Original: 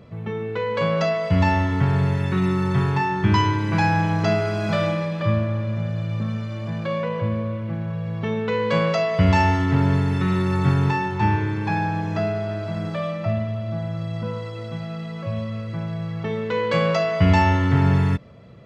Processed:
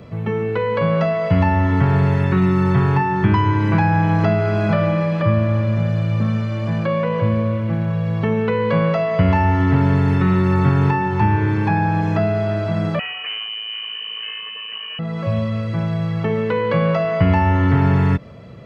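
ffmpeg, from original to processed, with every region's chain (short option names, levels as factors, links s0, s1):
-filter_complex "[0:a]asettb=1/sr,asplit=3[s0][s1][s2];[s0]atrim=end=12.994[s3];[s1]atrim=start=12.99:end=14.99,asetpts=PTS-STARTPTS,afade=t=in:d=0.004:c=qsin,afade=t=out:st=1.996:d=0.004:c=qsin,lowshelf=f=220:g=11,aeval=exprs='(tanh(7.94*val(0)+0.55)-tanh(0.55))/7.94':c=same,lowpass=f=2600:t=q:w=0.5098,lowpass=f=2600:t=q:w=0.6013,lowpass=f=2600:t=q:w=0.9,lowpass=f=2600:t=q:w=2.563,afreqshift=-3100[s4];[s2]atrim=start=14.986[s5];[s3][s4]acrossfade=d=0.004:c1=hsin:c2=qsin[s6];[s6][s5]acrossfade=d=0.004:c1=qsin:c2=hsin,acrossover=split=3700[s7][s8];[s8]acompressor=threshold=0.00158:ratio=4:attack=1:release=60[s9];[s7][s9]amix=inputs=2:normalize=0,bandreject=f=3600:w=24,acrossover=split=200|2000[s10][s11][s12];[s10]acompressor=threshold=0.0794:ratio=4[s13];[s11]acompressor=threshold=0.0562:ratio=4[s14];[s12]acompressor=threshold=0.00562:ratio=4[s15];[s13][s14][s15]amix=inputs=3:normalize=0,volume=2.24"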